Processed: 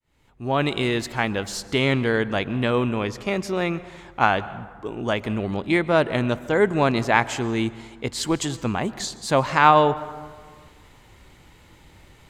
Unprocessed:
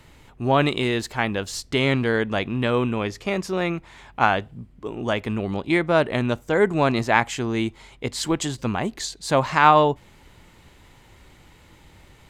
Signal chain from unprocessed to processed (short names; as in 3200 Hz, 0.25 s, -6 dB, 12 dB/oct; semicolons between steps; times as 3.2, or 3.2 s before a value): opening faded in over 0.84 s; plate-style reverb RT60 1.7 s, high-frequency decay 0.45×, pre-delay 0.11 s, DRR 16.5 dB